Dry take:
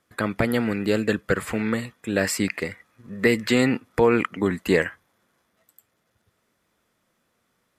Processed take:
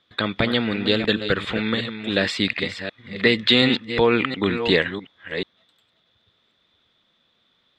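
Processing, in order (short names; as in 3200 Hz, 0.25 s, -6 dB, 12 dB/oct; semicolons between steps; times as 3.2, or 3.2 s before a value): reverse delay 0.362 s, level -9 dB; synth low-pass 3600 Hz, resonance Q 10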